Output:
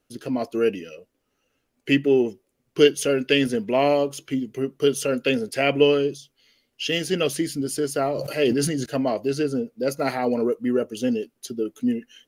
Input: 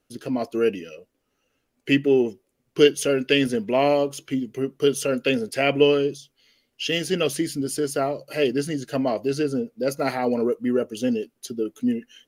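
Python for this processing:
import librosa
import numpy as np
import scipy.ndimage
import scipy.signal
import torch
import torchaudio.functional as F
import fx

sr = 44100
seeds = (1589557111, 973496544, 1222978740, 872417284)

y = fx.sustainer(x, sr, db_per_s=38.0, at=(8.0, 8.86))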